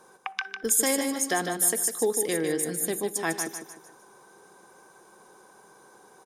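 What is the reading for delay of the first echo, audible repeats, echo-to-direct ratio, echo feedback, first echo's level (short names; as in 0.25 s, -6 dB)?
0.151 s, 4, -6.5 dB, 37%, -7.0 dB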